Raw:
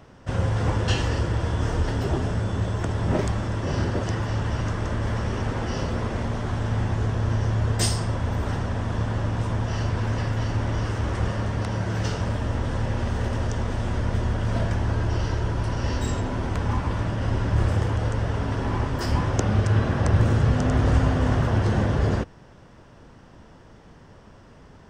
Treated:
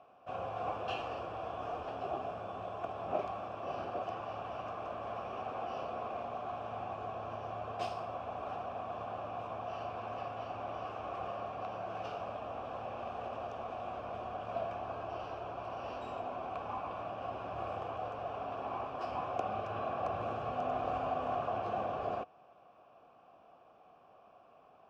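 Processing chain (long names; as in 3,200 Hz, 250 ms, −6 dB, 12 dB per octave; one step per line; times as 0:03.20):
running median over 5 samples
formant filter a
level +2.5 dB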